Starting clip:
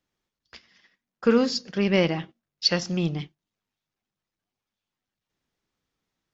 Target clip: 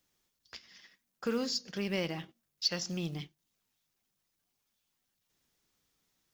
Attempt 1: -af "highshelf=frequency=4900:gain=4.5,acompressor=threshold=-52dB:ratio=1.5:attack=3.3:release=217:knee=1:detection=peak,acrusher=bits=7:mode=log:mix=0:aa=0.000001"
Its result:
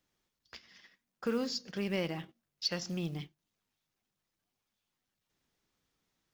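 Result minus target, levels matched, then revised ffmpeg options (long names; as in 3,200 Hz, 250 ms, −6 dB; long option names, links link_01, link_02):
8,000 Hz band −3.5 dB
-af "highshelf=frequency=4900:gain=14,acompressor=threshold=-52dB:ratio=1.5:attack=3.3:release=217:knee=1:detection=peak,acrusher=bits=7:mode=log:mix=0:aa=0.000001"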